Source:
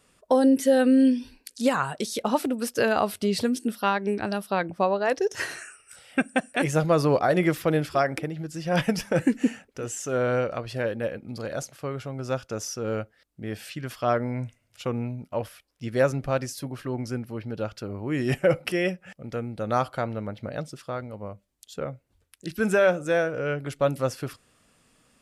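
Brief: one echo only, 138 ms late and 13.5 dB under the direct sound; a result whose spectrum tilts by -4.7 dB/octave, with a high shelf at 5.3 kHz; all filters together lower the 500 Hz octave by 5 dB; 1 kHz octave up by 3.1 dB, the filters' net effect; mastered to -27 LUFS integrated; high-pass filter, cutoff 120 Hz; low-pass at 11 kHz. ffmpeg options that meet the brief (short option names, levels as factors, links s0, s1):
-af "highpass=120,lowpass=11000,equalizer=f=500:t=o:g=-8,equalizer=f=1000:t=o:g=7,highshelf=f=5300:g=4.5,aecho=1:1:138:0.211,volume=1.06"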